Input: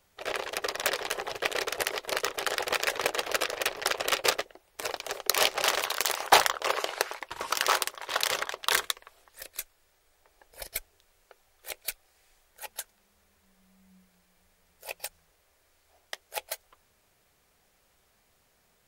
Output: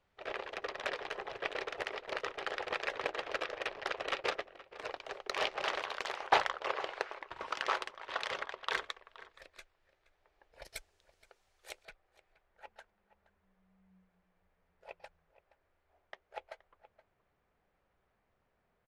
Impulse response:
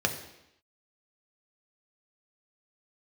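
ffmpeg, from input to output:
-filter_complex "[0:a]asetnsamples=n=441:p=0,asendcmd='10.65 lowpass f 7400;11.85 lowpass f 1800',lowpass=3k,asplit=2[a][b];[b]adelay=472.3,volume=-17dB,highshelf=f=4k:g=-10.6[c];[a][c]amix=inputs=2:normalize=0,volume=-7dB"

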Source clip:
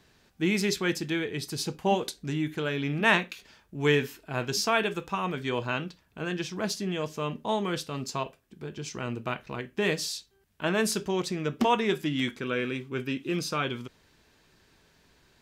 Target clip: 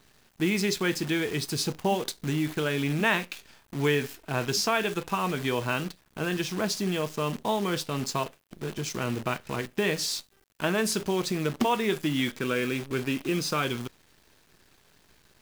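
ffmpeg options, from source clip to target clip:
-af "acompressor=threshold=-30dB:ratio=2,acrusher=bits=8:dc=4:mix=0:aa=0.000001,volume=4.5dB"

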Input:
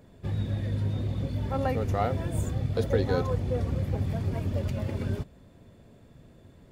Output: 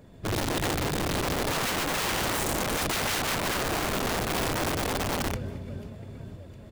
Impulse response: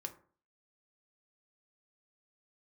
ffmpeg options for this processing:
-filter_complex "[0:a]asplit=2[a][b];[b]aecho=0:1:140|350|665|1138|1846:0.631|0.398|0.251|0.158|0.1[c];[a][c]amix=inputs=2:normalize=0,acontrast=27,aeval=exprs='(mod(11.2*val(0)+1,2)-1)/11.2':c=same,volume=-2.5dB"

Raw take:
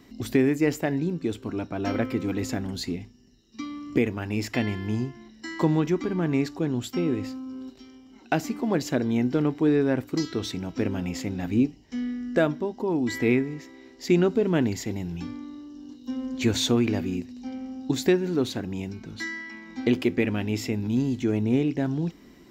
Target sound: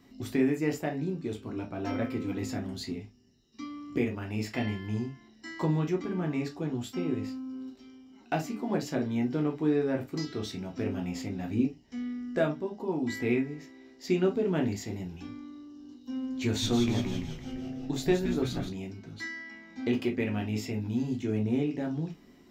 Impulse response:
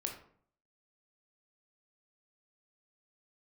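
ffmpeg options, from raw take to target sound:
-filter_complex "[0:a]asettb=1/sr,asplit=3[a][b][c];[a]atrim=end=16.454[d];[b]atrim=start=16.45:end=18.69,asetpts=PTS-STARTPTS,afade=t=in:d=0.004:c=qsin,afade=t=out:st=2.236:d=0.004:c=qsin,asplit=9[e][f][g][h][i][j][k][l][m];[f]adelay=170,afreqshift=-120,volume=-7dB[n];[g]adelay=340,afreqshift=-240,volume=-11.2dB[o];[h]adelay=510,afreqshift=-360,volume=-15.3dB[p];[i]adelay=680,afreqshift=-480,volume=-19.5dB[q];[j]adelay=850,afreqshift=-600,volume=-23.6dB[r];[k]adelay=1020,afreqshift=-720,volume=-27.8dB[s];[l]adelay=1190,afreqshift=-840,volume=-31.9dB[t];[m]adelay=1360,afreqshift=-960,volume=-36.1dB[u];[e][n][o][p][q][r][s][t][u]amix=inputs=9:normalize=0,atrim=end_sample=98784[v];[c]atrim=start=18.686[w];[d][v]acrossfade=d=0.004:c1=hsin:c2=qsin[x];[x][w]acrossfade=d=0.004:c1=qsin:c2=hsin[y];[1:a]atrim=start_sample=2205,atrim=end_sample=6615,asetrate=88200,aresample=44100[z];[y][z]afir=irnorm=-1:irlink=0"

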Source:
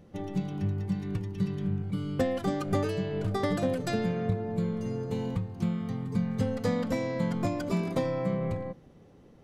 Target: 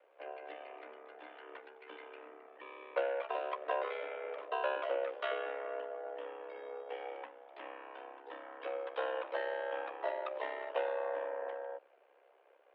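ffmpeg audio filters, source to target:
-af "aeval=exprs='val(0)*sin(2*PI*45*n/s)':c=same,asetrate=32667,aresample=44100,highpass=f=410:t=q:w=0.5412,highpass=f=410:t=q:w=1.307,lowpass=f=3k:t=q:w=0.5176,lowpass=f=3k:t=q:w=0.7071,lowpass=f=3k:t=q:w=1.932,afreqshift=130,volume=2dB"

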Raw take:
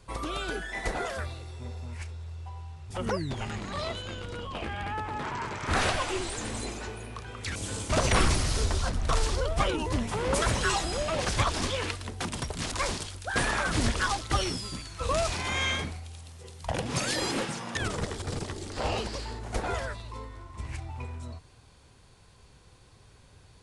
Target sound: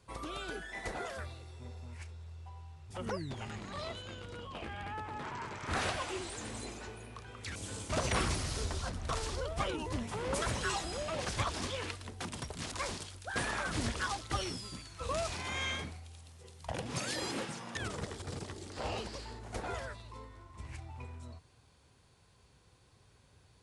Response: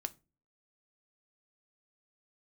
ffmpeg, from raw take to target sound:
-af "highpass=53,volume=-7.5dB"

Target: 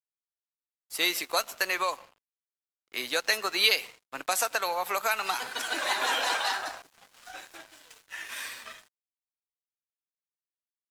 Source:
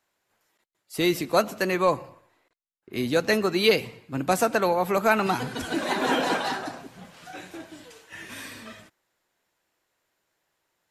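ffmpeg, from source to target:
-filter_complex "[0:a]asettb=1/sr,asplit=3[a][b][c];[a]atrim=end=6.824[d];[b]atrim=start=6.82:end=7.55,asetpts=PTS-STARTPTS,afade=t=in:d=0.004:c=qsin,afade=t=out:st=0.726:d=0.004:c=qsin,adynamicequalizer=threshold=0.00158:dfrequency=2300:dqfactor=1.1:tfrequency=2300:tqfactor=1.1:attack=5:release=100:ratio=0.375:range=3:mode=cutabove:tftype=bell[e];[c]atrim=start=7.546[f];[d][e]acrossfade=d=0.004:c1=hsin:c2=qsin[g];[g][f]acrossfade=d=0.004:c1=qsin:c2=hsin,highpass=880,acrossover=split=3000[h][i];[h]acompressor=threshold=-30dB:ratio=6[j];[j][i]amix=inputs=2:normalize=0,aeval=exprs='sgn(val(0))*max(abs(val(0))-0.00251,0)':c=same,volume=4.5dB"

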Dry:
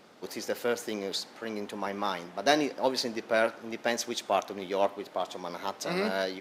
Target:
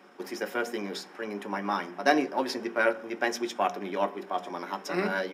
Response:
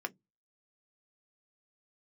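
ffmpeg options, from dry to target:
-filter_complex "[0:a]bandreject=f=79.43:t=h:w=4,bandreject=f=158.86:t=h:w=4,bandreject=f=238.29:t=h:w=4,bandreject=f=317.72:t=h:w=4,bandreject=f=397.15:t=h:w=4,bandreject=f=476.58:t=h:w=4,bandreject=f=556.01:t=h:w=4,bandreject=f=635.44:t=h:w=4,bandreject=f=714.87:t=h:w=4,atempo=1.2[a];[1:a]atrim=start_sample=2205[b];[a][b]afir=irnorm=-1:irlink=0"

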